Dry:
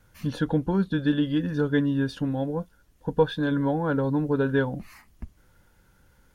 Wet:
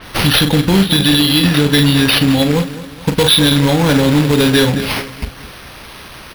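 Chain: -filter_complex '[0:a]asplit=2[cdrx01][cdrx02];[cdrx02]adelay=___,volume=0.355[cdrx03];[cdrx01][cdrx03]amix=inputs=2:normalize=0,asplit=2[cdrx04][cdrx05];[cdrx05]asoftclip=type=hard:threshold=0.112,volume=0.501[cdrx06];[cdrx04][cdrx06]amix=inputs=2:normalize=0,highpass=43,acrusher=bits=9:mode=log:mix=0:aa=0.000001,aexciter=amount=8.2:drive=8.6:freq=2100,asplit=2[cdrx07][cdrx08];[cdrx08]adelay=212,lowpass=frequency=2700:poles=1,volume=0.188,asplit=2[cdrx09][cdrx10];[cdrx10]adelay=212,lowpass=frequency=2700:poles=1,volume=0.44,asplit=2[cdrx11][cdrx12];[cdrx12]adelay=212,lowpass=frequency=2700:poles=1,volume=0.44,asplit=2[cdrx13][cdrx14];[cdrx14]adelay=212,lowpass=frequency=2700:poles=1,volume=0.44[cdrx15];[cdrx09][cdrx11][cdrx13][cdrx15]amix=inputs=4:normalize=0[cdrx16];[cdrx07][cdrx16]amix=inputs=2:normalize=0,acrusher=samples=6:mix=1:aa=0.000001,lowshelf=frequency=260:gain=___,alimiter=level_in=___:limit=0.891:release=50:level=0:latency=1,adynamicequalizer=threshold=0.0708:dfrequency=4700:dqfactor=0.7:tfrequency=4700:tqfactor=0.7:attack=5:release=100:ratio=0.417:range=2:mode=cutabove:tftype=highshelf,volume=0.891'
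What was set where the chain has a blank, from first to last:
41, 6.5, 2.51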